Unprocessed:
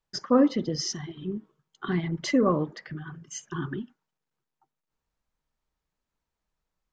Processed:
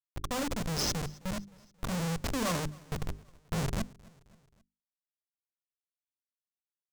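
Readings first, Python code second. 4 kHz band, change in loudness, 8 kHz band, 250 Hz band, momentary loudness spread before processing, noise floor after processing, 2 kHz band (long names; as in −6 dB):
−1.0 dB, −7.5 dB, −0.5 dB, −10.0 dB, 18 LU, below −85 dBFS, −2.0 dB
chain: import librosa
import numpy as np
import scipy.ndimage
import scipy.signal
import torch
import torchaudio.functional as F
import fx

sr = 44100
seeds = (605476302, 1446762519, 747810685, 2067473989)

y = scipy.signal.sosfilt(scipy.signal.butter(2, 58.0, 'highpass', fs=sr, output='sos'), x)
y = fx.env_lowpass(y, sr, base_hz=950.0, full_db=-21.5)
y = fx.fixed_phaser(y, sr, hz=880.0, stages=4)
y = fx.schmitt(y, sr, flips_db=-36.5)
y = fx.hum_notches(y, sr, base_hz=50, count=8)
y = fx.rider(y, sr, range_db=10, speed_s=2.0)
y = fx.dynamic_eq(y, sr, hz=6900.0, q=0.98, threshold_db=-59.0, ratio=4.0, max_db=6)
y = fx.echo_feedback(y, sr, ms=265, feedback_pct=53, wet_db=-24.0)
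y = F.gain(torch.from_numpy(y), 4.5).numpy()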